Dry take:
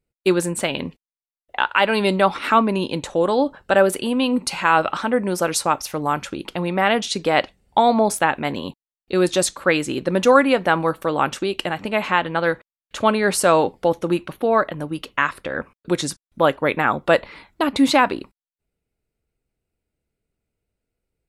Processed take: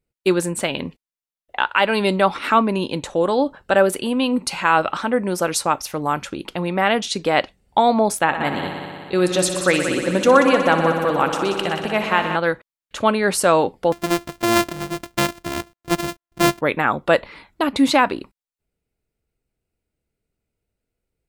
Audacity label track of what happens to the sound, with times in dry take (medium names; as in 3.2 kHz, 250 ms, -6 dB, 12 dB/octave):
8.220000	12.360000	multi-head delay 61 ms, heads all three, feedback 68%, level -12.5 dB
13.920000	16.610000	sorted samples in blocks of 128 samples